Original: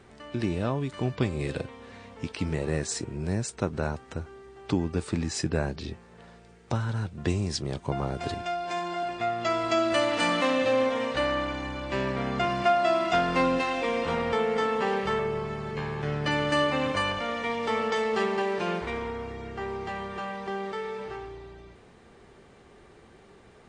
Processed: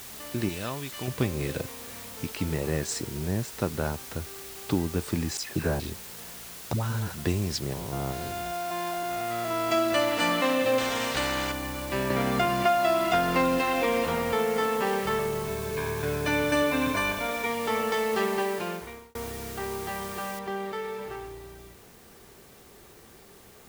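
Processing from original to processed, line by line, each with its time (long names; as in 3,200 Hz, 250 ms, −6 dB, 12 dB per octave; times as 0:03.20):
0:00.49–0:01.08: tilt shelving filter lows −8 dB, about 1,500 Hz
0:03.09–0:03.55: high-shelf EQ 4,000 Hz −10.5 dB
0:05.37–0:05.80: all-pass dispersion lows, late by 125 ms, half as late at 2,200 Hz
0:06.73–0:07.15: all-pass dispersion highs, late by 96 ms, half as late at 560 Hz
0:07.73–0:09.70: spectrum averaged block by block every 200 ms
0:10.78–0:11.52: every bin compressed towards the loudest bin 2 to 1
0:12.10–0:14.06: multiband upward and downward compressor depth 70%
0:15.47–0:17.46: EQ curve with evenly spaced ripples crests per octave 1.6, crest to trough 12 dB
0:18.43–0:19.15: fade out
0:20.39: noise floor change −43 dB −56 dB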